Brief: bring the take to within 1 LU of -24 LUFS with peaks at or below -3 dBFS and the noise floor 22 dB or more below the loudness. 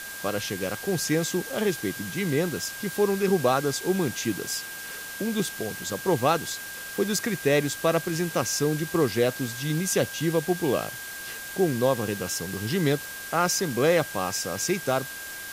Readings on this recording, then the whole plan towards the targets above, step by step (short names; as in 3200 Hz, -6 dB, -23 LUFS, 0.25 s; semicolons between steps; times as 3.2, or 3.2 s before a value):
steady tone 1600 Hz; tone level -38 dBFS; noise floor -38 dBFS; noise floor target -49 dBFS; loudness -26.5 LUFS; peak -9.0 dBFS; loudness target -24.0 LUFS
-> notch 1600 Hz, Q 30; denoiser 11 dB, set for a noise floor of -38 dBFS; gain +2.5 dB